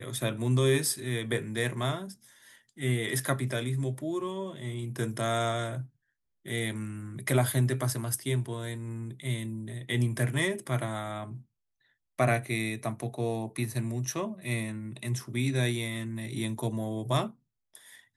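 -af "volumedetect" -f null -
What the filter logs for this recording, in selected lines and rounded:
mean_volume: -31.4 dB
max_volume: -13.3 dB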